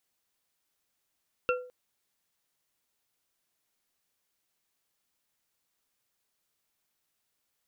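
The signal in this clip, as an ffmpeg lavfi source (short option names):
-f lavfi -i "aevalsrc='0.0668*pow(10,-3*t/0.48)*sin(2*PI*499*t)+0.0596*pow(10,-3*t/0.236)*sin(2*PI*1375.7*t)+0.0531*pow(10,-3*t/0.147)*sin(2*PI*2696.6*t)':d=0.21:s=44100"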